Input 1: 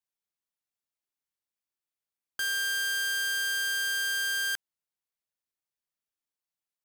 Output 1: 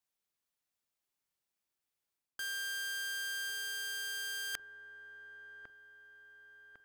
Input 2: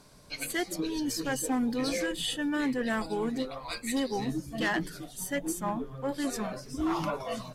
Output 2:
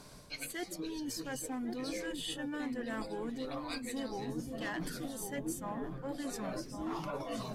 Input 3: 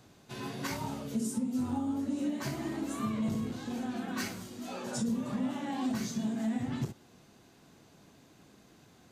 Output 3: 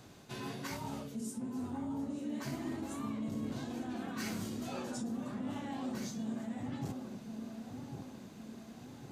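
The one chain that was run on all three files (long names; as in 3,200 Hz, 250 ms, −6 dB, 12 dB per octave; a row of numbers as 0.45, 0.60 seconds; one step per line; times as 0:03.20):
reversed playback
downward compressor 6 to 1, threshold −41 dBFS
reversed playback
delay with a low-pass on its return 1,102 ms, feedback 50%, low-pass 960 Hz, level −5 dB
level +3 dB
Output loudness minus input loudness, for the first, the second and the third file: −9.5, −7.5, −6.0 LU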